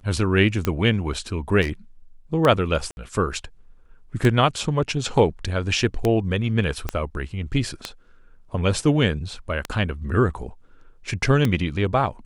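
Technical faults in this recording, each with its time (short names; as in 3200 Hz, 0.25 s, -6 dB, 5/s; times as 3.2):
tick 33 1/3 rpm -8 dBFS
1.61–1.72 clipped -20 dBFS
2.91–2.97 gap 61 ms
6.89 pop -11 dBFS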